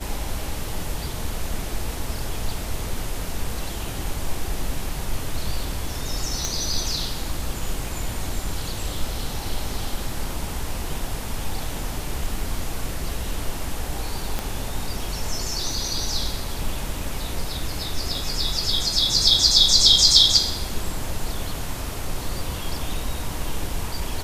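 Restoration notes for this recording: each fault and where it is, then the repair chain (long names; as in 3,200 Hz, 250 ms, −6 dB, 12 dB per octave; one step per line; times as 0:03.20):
0:06.45: click
0:14.39: click −11 dBFS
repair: click removal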